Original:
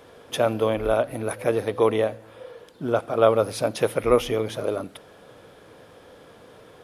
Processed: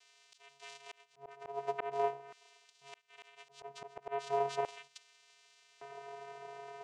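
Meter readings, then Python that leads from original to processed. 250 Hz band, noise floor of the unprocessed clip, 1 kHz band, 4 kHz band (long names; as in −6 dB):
−30.5 dB, −50 dBFS, −9.5 dB, −16.5 dB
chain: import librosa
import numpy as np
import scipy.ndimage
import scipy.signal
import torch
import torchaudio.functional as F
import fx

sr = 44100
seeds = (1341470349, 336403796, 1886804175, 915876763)

y = fx.vocoder(x, sr, bands=4, carrier='square', carrier_hz=139.0)
y = fx.filter_lfo_highpass(y, sr, shape='square', hz=0.43, low_hz=680.0, high_hz=3700.0, q=0.92)
y = fx.auto_swell(y, sr, attack_ms=746.0)
y = y * librosa.db_to_amplitude(7.0)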